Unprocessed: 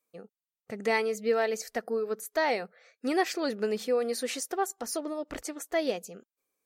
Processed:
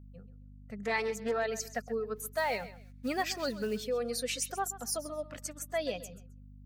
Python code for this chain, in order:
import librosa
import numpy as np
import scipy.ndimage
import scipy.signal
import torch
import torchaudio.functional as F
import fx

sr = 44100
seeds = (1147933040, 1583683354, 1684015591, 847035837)

p1 = fx.bin_expand(x, sr, power=1.5)
p2 = scipy.signal.sosfilt(scipy.signal.butter(4, 120.0, 'highpass', fs=sr, output='sos'), p1)
p3 = fx.peak_eq(p2, sr, hz=340.0, db=-12.5, octaves=0.49)
p4 = fx.over_compress(p3, sr, threshold_db=-34.0, ratio=-0.5)
p5 = p3 + (p4 * 10.0 ** (-3.0 / 20.0))
p6 = fx.quant_companded(p5, sr, bits=6, at=(2.15, 3.83), fade=0.02)
p7 = fx.add_hum(p6, sr, base_hz=50, snr_db=15)
p8 = p7 + fx.echo_feedback(p7, sr, ms=132, feedback_pct=22, wet_db=-15, dry=0)
p9 = fx.doppler_dist(p8, sr, depth_ms=0.24, at=(0.83, 1.4))
y = p9 * 10.0 ** (-3.0 / 20.0)